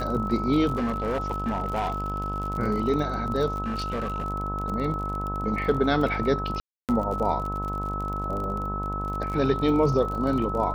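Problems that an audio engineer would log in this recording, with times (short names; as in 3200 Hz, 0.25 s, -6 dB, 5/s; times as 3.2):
buzz 50 Hz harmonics 25 -32 dBFS
crackle 35/s -31 dBFS
tone 1300 Hz -30 dBFS
0.76–2.5 clipped -22.5 dBFS
3.62–4.24 clipped -25 dBFS
6.6–6.89 gap 0.288 s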